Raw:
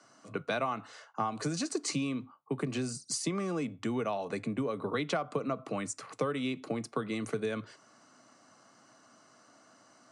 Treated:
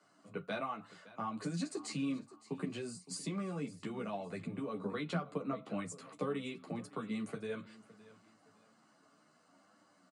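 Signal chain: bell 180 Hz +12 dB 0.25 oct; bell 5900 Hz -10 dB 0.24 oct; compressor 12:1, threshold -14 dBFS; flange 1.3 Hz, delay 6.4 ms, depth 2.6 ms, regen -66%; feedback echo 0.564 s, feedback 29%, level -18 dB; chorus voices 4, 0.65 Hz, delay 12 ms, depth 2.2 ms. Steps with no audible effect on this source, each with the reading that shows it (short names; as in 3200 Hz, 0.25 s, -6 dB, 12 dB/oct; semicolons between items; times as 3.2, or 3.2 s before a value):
compressor, threshold -14 dBFS: input peak -17.5 dBFS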